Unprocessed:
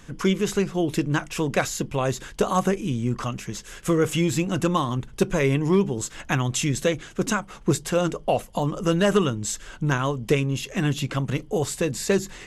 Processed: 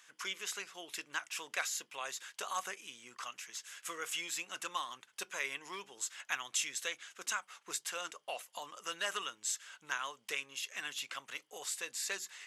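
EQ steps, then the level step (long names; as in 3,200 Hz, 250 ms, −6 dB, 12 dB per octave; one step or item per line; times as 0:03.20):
high-pass filter 1,400 Hz 12 dB per octave
−7.0 dB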